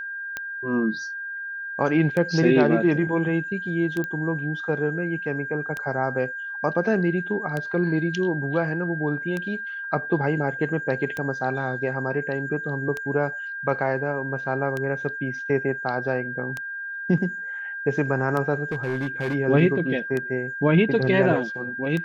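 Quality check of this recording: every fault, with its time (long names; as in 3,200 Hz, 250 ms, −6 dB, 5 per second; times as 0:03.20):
scratch tick 33 1/3 rpm −15 dBFS
whistle 1,600 Hz −30 dBFS
0:04.04: click −17 dBFS
0:18.71–0:19.35: clipping −22 dBFS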